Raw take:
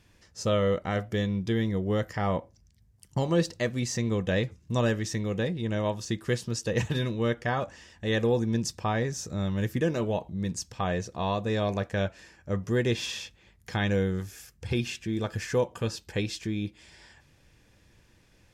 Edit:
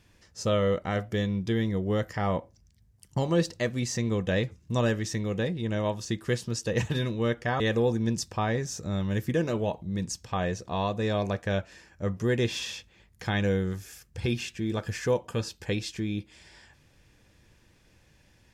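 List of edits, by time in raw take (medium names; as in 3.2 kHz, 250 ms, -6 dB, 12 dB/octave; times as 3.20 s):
7.60–8.07 s: delete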